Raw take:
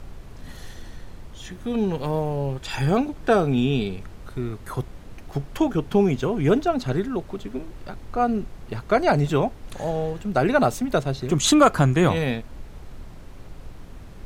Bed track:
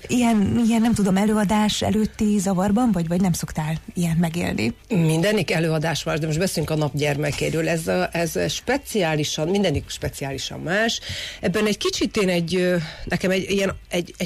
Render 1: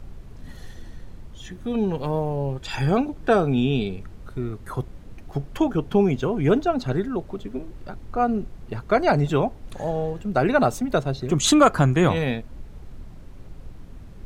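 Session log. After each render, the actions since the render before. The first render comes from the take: noise reduction 6 dB, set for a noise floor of -42 dBFS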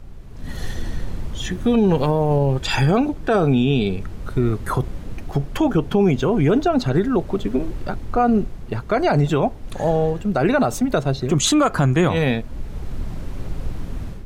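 level rider gain up to 13.5 dB; peak limiter -9 dBFS, peak gain reduction 8 dB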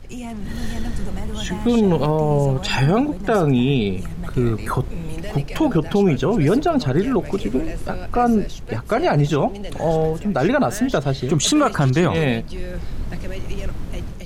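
add bed track -13.5 dB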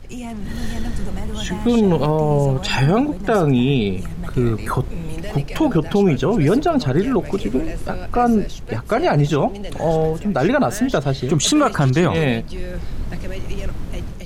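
trim +1 dB

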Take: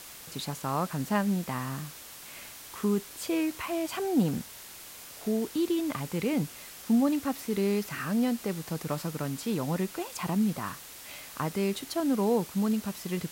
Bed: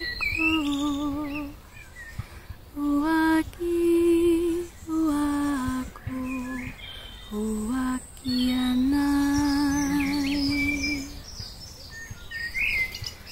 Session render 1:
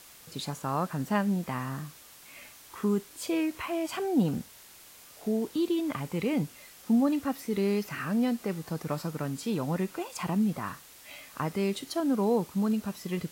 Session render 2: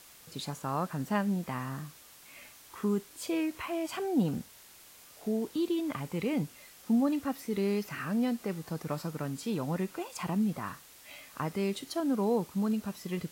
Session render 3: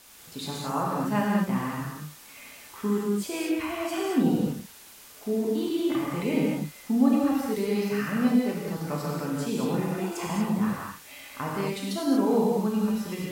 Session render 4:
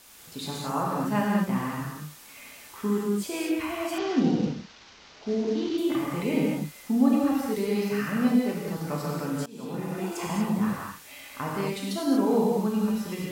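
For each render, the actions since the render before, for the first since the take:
noise print and reduce 6 dB
trim -2.5 dB
gated-style reverb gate 260 ms flat, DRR -4.5 dB
3.98–5.78 s: CVSD coder 32 kbps; 9.46–10.13 s: fade in, from -22 dB

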